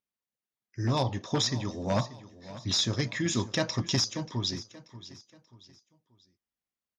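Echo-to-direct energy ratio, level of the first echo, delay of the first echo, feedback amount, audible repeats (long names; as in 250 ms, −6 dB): −16.0 dB, −16.5 dB, 584 ms, 38%, 3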